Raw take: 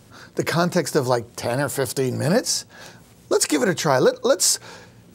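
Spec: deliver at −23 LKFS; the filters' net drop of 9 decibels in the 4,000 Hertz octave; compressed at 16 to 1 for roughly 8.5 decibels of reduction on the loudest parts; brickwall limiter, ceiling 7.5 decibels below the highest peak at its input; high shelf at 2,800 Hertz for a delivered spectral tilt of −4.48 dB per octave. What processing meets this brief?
high-shelf EQ 2,800 Hz −5 dB
parametric band 4,000 Hz −7.5 dB
downward compressor 16 to 1, threshold −21 dBFS
level +7 dB
brickwall limiter −11.5 dBFS

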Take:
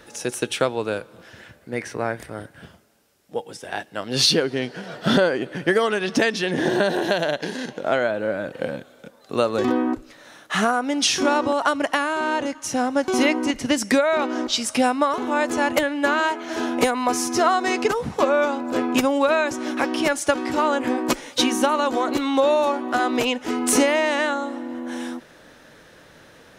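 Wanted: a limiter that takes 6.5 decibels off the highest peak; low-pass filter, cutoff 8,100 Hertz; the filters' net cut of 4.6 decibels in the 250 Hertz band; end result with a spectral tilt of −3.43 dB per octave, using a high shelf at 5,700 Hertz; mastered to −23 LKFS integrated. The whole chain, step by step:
low-pass filter 8,100 Hz
parametric band 250 Hz −5.5 dB
high-shelf EQ 5,700 Hz −5 dB
level +2 dB
brickwall limiter −11 dBFS

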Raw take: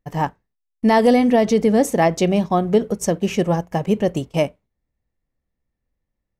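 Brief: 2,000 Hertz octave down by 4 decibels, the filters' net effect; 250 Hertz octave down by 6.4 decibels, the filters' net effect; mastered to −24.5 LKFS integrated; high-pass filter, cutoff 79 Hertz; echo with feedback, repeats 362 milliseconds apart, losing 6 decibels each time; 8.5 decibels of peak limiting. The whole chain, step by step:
high-pass filter 79 Hz
parametric band 250 Hz −8 dB
parametric band 2,000 Hz −4.5 dB
brickwall limiter −16 dBFS
repeating echo 362 ms, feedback 50%, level −6 dB
level +1 dB

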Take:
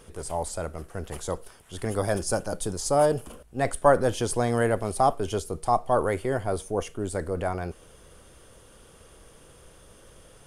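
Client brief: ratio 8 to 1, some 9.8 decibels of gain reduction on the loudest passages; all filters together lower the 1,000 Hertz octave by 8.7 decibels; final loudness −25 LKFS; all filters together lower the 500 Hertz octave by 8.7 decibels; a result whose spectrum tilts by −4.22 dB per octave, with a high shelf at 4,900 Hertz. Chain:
parametric band 500 Hz −8 dB
parametric band 1,000 Hz −9 dB
high-shelf EQ 4,900 Hz +3.5 dB
downward compressor 8 to 1, threshold −30 dBFS
level +11 dB

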